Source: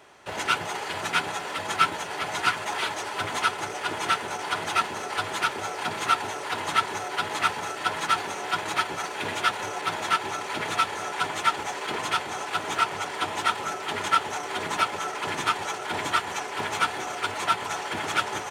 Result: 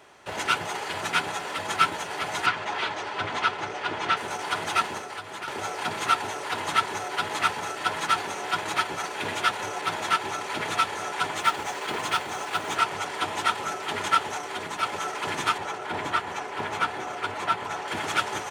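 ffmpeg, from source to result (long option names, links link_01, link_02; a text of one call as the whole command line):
ffmpeg -i in.wav -filter_complex "[0:a]asettb=1/sr,asplit=3[link_01][link_02][link_03];[link_01]atrim=end=2.464[link_04];[link_02]atrim=start=2.46:end=4.17,asetpts=PTS-STARTPTS,afade=type=in:duration=0.004:curve=qsin,afade=type=out:start_time=1.706:duration=0.004:curve=qsin,lowpass=4400[link_05];[link_03]atrim=start=4.166[link_06];[link_04][link_05]acrossfade=duration=0.004:curve1=hsin:curve2=qsin[link_07];[link_07][link_06]acrossfade=duration=0.004:curve1=qsin:curve2=hsin,asettb=1/sr,asplit=3[link_08][link_09][link_10];[link_08]atrim=end=4.984[link_11];[link_09]atrim=start=4.98:end=5.48,asetpts=PTS-STARTPTS,afade=type=in:duration=0.004:curve=qsin,afade=type=out:start_time=0.496:duration=0.004:curve=qsin,acrossover=split=110|3100[link_12][link_13][link_14];[link_12]acompressor=threshold=-59dB:ratio=4[link_15];[link_13]acompressor=threshold=-36dB:ratio=4[link_16];[link_14]acompressor=threshold=-48dB:ratio=4[link_17];[link_15][link_16][link_17]amix=inputs=3:normalize=0[link_18];[link_10]atrim=start=5.476[link_19];[link_11][link_18]acrossfade=duration=0.004:curve1=hsin:curve2=qsin[link_20];[link_20][link_19]acrossfade=duration=0.004:curve1=qsin:curve2=hsin,asettb=1/sr,asplit=3[link_21][link_22][link_23];[link_21]atrim=end=11.374[link_24];[link_22]atrim=start=11.37:end=12.75,asetpts=PTS-STARTPTS,afade=type=in:duration=0.004:curve=qsin,afade=type=out:start_time=1.376:duration=0.004:curve=qsin,acrusher=bits=6:mode=log:mix=0:aa=0.000001[link_25];[link_23]atrim=start=12.746[link_26];[link_24][link_25]acrossfade=duration=0.004:curve1=hsin:curve2=qsin[link_27];[link_27][link_26]acrossfade=duration=0.004:curve1=qsin:curve2=hsin,asettb=1/sr,asplit=3[link_28][link_29][link_30];[link_28]atrim=end=15.584[link_31];[link_29]atrim=start=15.58:end=17.88,asetpts=PTS-STARTPTS,afade=type=in:duration=0.004:curve=qsin,afade=type=out:start_time=2.296:duration=0.004:curve=qsin,highshelf=frequency=3500:gain=-10[link_32];[link_30]atrim=start=17.876[link_33];[link_31][link_32]acrossfade=duration=0.004:curve1=hsin:curve2=qsin[link_34];[link_34][link_33]acrossfade=duration=0.004:curve1=qsin:curve2=hsin,asplit=2[link_35][link_36];[link_35]atrim=end=14.83,asetpts=PTS-STARTPTS,afade=type=out:start_time=14.25:duration=0.58:silence=0.501187[link_37];[link_36]atrim=start=14.83,asetpts=PTS-STARTPTS,afade=type=in:duration=0.004:curve=hsin:silence=0.501187[link_38];[link_37][link_38]concat=n=2:v=0:a=1" out.wav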